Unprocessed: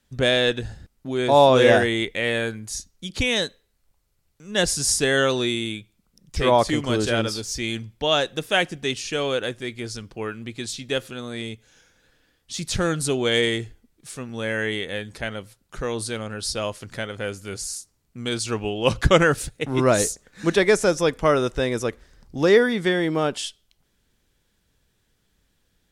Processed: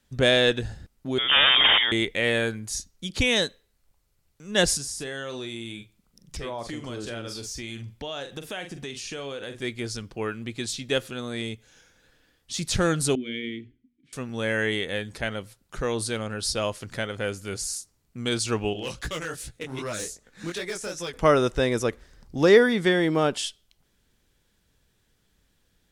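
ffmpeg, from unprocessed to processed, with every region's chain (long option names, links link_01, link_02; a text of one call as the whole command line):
ffmpeg -i in.wav -filter_complex "[0:a]asettb=1/sr,asplit=3[link_01][link_02][link_03];[link_01]atrim=end=1.184[link_04];[link_02]atrim=start=1.18:end=1.92,asetpts=PTS-STARTPTS,afade=type=in:duration=0.004:curve=qsin,afade=type=out:start_time=0.736:duration=0.004:curve=qsin,lowshelf=frequency=380:gain=-7,aeval=exprs='(mod(3.35*val(0)+1,2)-1)/3.35':channel_layout=same,lowpass=frequency=3100:width_type=q:width=0.5098,lowpass=frequency=3100:width_type=q:width=0.6013,lowpass=frequency=3100:width_type=q:width=0.9,lowpass=frequency=3100:width_type=q:width=2.563,afreqshift=-3700[link_05];[link_03]atrim=start=1.916[link_06];[link_04][link_05]acrossfade=duration=0.004:curve1=hsin:curve2=qsin[link_07];[link_07][link_06]acrossfade=duration=0.004:curve1=qsin:curve2=hsin,asettb=1/sr,asplit=3[link_08][link_09][link_10];[link_08]atrim=end=4.774[link_11];[link_09]atrim=start=4.77:end=9.62,asetpts=PTS-STARTPTS,afade=type=in:duration=0.004:curve=qsin,afade=type=out:start_time=4.846:duration=0.004:curve=qsin,asplit=2[link_12][link_13];[link_13]adelay=43,volume=-11dB[link_14];[link_12][link_14]amix=inputs=2:normalize=0,atrim=end_sample=213885,acompressor=threshold=-33dB:ratio=4:attack=3.2:release=140:knee=1:detection=peak[link_15];[link_10]atrim=start=9.616[link_16];[link_11][link_15]acrossfade=duration=0.004:curve1=hsin:curve2=qsin[link_17];[link_17][link_16]acrossfade=duration=0.004:curve1=qsin:curve2=hsin,asettb=1/sr,asplit=3[link_18][link_19][link_20];[link_18]atrim=end=13.154[link_21];[link_19]atrim=start=13.15:end=14.13,asetpts=PTS-STARTPTS,afade=type=in:duration=0.004:curve=qsin,afade=type=out:start_time=0.976:duration=0.004:curve=qsin,asplit=3[link_22][link_23][link_24];[link_22]bandpass=frequency=270:width_type=q:width=8,volume=0dB[link_25];[link_23]bandpass=frequency=2290:width_type=q:width=8,volume=-6dB[link_26];[link_24]bandpass=frequency=3010:width_type=q:width=8,volume=-9dB[link_27];[link_25][link_26][link_27]amix=inputs=3:normalize=0,aemphasis=mode=reproduction:type=bsi,bandreject=frequency=60:width_type=h:width=6,bandreject=frequency=120:width_type=h:width=6,bandreject=frequency=180:width_type=h:width=6,bandreject=frequency=240:width_type=h:width=6,bandreject=frequency=300:width_type=h:width=6,bandreject=frequency=360:width_type=h:width=6,bandreject=frequency=420:width_type=h:width=6,bandreject=frequency=480:width_type=h:width=6[link_28];[link_20]atrim=start=14.126[link_29];[link_21][link_28]acrossfade=duration=0.004:curve1=hsin:curve2=qsin[link_30];[link_30][link_29]acrossfade=duration=0.004:curve1=qsin:curve2=hsin,asettb=1/sr,asplit=3[link_31][link_32][link_33];[link_31]atrim=end=18.734[link_34];[link_32]atrim=start=18.73:end=21.14,asetpts=PTS-STARTPTS,afade=type=in:duration=0.004:curve=qsin,afade=type=out:start_time=2.406:duration=0.004:curve=qsin,acrossover=split=1600|4600[link_35][link_36][link_37];[link_35]acompressor=threshold=-30dB:ratio=4[link_38];[link_36]acompressor=threshold=-33dB:ratio=4[link_39];[link_37]acompressor=threshold=-33dB:ratio=4[link_40];[link_38][link_39][link_40]amix=inputs=3:normalize=0,flanger=delay=17:depth=7.3:speed=2.6,asoftclip=type=hard:threshold=-25.5dB[link_41];[link_33]atrim=start=21.136[link_42];[link_34][link_41]acrossfade=duration=0.004:curve1=hsin:curve2=qsin[link_43];[link_43][link_42]acrossfade=duration=0.004:curve1=qsin:curve2=hsin" out.wav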